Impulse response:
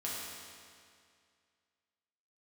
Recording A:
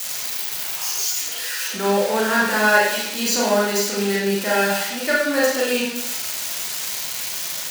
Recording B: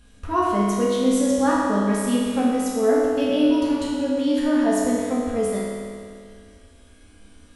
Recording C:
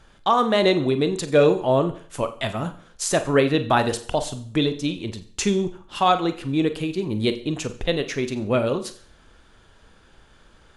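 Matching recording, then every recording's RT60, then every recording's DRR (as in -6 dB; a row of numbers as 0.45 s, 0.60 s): B; 0.80 s, 2.2 s, no single decay rate; -6.5 dB, -6.5 dB, 9.0 dB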